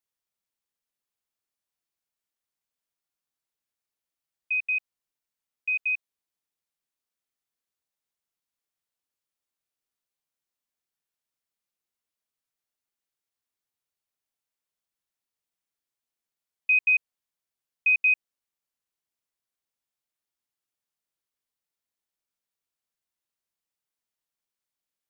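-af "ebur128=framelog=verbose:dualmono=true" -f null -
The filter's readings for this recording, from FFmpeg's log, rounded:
Integrated loudness:
  I:         -20.6 LUFS
  Threshold: -30.9 LUFS
Loudness range:
  LRA:         8.6 LU
  Threshold: -46.1 LUFS
  LRA low:   -31.1 LUFS
  LRA high:  -22.5 LUFS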